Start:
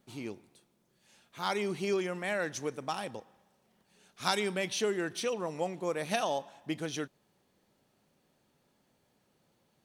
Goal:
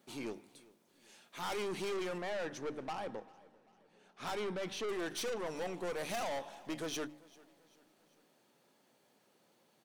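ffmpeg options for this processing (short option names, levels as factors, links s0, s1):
-filter_complex "[0:a]highpass=220,bandreject=f=50:t=h:w=6,bandreject=f=100:t=h:w=6,bandreject=f=150:t=h:w=6,bandreject=f=200:t=h:w=6,bandreject=f=250:t=h:w=6,bandreject=f=300:t=h:w=6,asettb=1/sr,asplit=3[s0][s1][s2];[s0]atrim=end=2.184[s3];[s1]atrim=start=2.18:end=4.89,asetpts=PTS-STARTPTS,afade=t=in:d=0.004:c=qsin,afade=t=out:st=2.706:d=0.004:c=qsin,lowpass=f=1300:p=1[s4];[s2]atrim=start=4.886[s5];[s3][s4]acrossfade=d=0.004:c1=hsin:c2=qsin[s6];[s6][s5]acrossfade=d=0.004:c1=qsin:c2=hsin,aeval=exprs='(tanh(89.1*val(0)+0.3)-tanh(0.3))/89.1':c=same,aecho=1:1:393|786|1179:0.0708|0.034|0.0163,volume=1.5"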